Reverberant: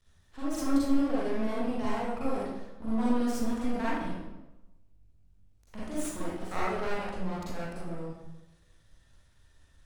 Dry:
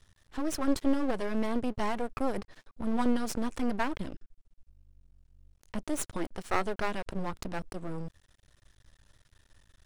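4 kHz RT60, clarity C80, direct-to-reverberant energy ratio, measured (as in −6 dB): 0.75 s, 0.5 dB, −9.0 dB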